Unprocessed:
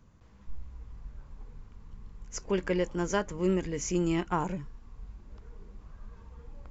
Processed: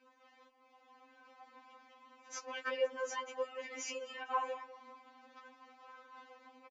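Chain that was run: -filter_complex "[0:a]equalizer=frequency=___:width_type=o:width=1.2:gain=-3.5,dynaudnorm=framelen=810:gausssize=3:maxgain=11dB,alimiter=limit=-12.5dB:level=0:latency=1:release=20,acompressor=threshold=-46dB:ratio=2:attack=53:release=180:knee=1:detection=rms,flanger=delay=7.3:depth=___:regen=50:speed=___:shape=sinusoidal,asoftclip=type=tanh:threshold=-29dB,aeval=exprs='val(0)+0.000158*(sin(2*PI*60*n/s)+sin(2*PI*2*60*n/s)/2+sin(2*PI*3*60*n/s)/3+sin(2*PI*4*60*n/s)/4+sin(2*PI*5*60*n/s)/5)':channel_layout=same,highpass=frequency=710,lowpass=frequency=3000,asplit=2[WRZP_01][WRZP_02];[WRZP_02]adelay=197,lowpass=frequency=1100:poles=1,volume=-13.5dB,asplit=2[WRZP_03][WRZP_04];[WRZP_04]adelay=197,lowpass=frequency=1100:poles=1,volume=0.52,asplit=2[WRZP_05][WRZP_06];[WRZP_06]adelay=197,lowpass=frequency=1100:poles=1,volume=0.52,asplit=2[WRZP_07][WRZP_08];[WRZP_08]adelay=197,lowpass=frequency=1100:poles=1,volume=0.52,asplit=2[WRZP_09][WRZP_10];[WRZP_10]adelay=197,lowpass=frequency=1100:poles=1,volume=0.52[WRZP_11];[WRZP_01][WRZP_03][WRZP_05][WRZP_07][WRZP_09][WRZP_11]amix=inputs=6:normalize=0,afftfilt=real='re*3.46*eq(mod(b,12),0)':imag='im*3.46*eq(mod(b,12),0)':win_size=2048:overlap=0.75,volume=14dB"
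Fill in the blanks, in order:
1500, 2, 1.8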